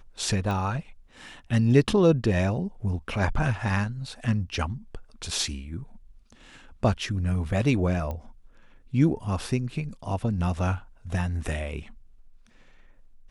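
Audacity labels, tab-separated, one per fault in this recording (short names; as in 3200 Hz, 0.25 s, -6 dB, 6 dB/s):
0.510000	0.510000	pop -19 dBFS
8.110000	8.110000	pop -21 dBFS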